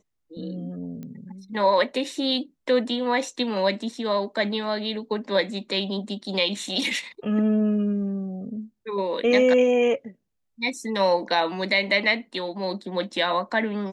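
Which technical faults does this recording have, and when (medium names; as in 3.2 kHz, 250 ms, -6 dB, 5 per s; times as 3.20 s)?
1.03 s: pop -26 dBFS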